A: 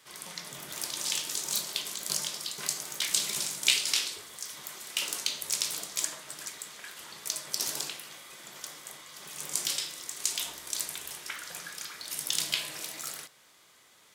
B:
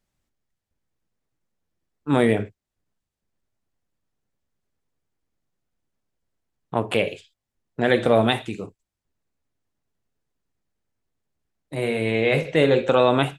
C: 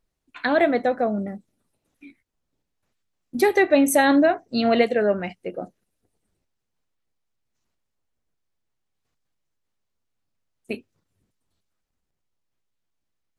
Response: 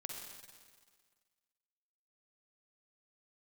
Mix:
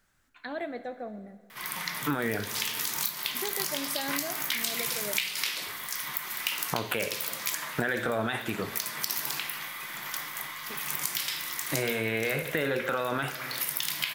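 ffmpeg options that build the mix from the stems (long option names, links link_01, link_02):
-filter_complex "[0:a]equalizer=frequency=125:width_type=o:width=1:gain=7,equalizer=frequency=250:width_type=o:width=1:gain=4,equalizer=frequency=500:width_type=o:width=1:gain=-4,equalizer=frequency=1000:width_type=o:width=1:gain=9,equalizer=frequency=2000:width_type=o:width=1:gain=10,equalizer=frequency=8000:width_type=o:width=1:gain=-11,equalizer=frequency=16000:width_type=o:width=1:gain=11,adelay=1500,volume=1dB,asplit=2[link_01][link_02];[link_02]volume=-23dB[link_03];[1:a]equalizer=frequency=1500:width_type=o:width=0.78:gain=14,alimiter=limit=-9.5dB:level=0:latency=1:release=20,volume=3dB,asplit=2[link_04][link_05];[link_05]volume=-12dB[link_06];[2:a]volume=-18.5dB,asplit=2[link_07][link_08];[link_08]volume=-6dB[link_09];[3:a]atrim=start_sample=2205[link_10];[link_03][link_06][link_09]amix=inputs=3:normalize=0[link_11];[link_11][link_10]afir=irnorm=-1:irlink=0[link_12];[link_01][link_04][link_07][link_12]amix=inputs=4:normalize=0,highshelf=frequency=4400:gain=6,acompressor=threshold=-27dB:ratio=6"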